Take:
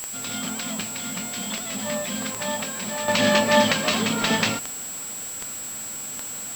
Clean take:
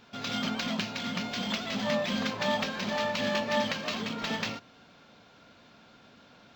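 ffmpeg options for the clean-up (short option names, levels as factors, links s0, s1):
-af "adeclick=t=4,bandreject=f=7700:w=30,afwtdn=0.01,asetnsamples=n=441:p=0,asendcmd='3.08 volume volume -10.5dB',volume=1"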